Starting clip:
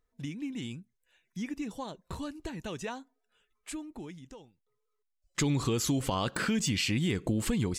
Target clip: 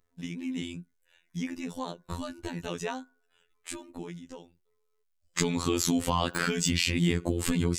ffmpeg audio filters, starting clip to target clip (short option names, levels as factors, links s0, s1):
-af "afftfilt=real='hypot(re,im)*cos(PI*b)':imag='0':win_size=2048:overlap=0.75,bandreject=f=367.4:t=h:w=4,bandreject=f=734.8:t=h:w=4,bandreject=f=1102.2:t=h:w=4,bandreject=f=1469.6:t=h:w=4,bandreject=f=1837:t=h:w=4,volume=2.11"